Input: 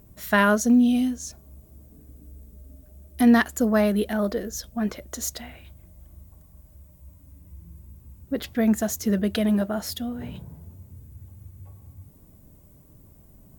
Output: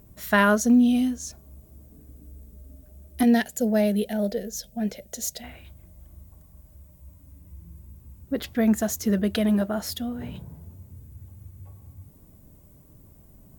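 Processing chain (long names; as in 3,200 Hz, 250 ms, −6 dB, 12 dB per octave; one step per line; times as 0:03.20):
0:03.23–0:05.44: phaser with its sweep stopped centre 310 Hz, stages 6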